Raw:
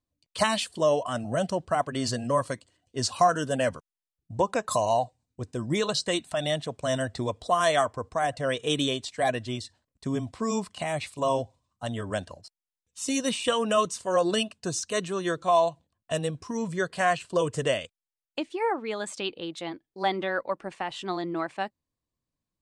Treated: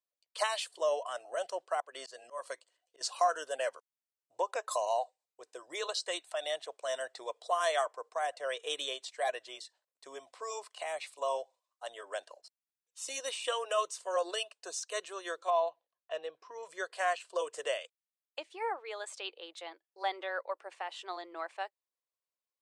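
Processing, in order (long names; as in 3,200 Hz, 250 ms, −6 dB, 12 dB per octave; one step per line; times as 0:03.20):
inverse Chebyshev high-pass filter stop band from 230 Hz, stop band 40 dB
0:01.80–0:03.01: volume swells 193 ms
0:15.50–0:16.63: high-frequency loss of the air 200 metres
level −7 dB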